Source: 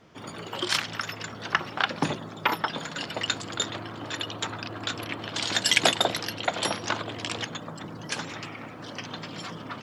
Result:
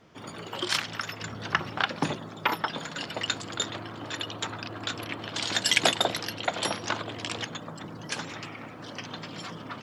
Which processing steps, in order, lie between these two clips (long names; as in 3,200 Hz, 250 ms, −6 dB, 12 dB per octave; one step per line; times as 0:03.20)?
0:01.22–0:01.84: low-shelf EQ 170 Hz +9 dB
level −1.5 dB